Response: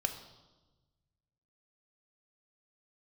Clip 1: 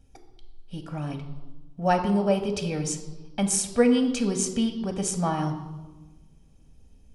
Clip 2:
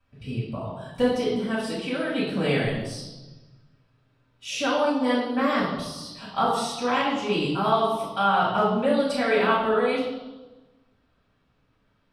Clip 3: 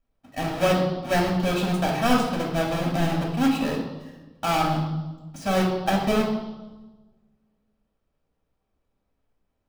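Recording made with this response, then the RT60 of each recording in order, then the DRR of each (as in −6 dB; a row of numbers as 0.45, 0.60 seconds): 1; 1.2, 1.2, 1.2 seconds; 5.0, −10.5, −2.5 decibels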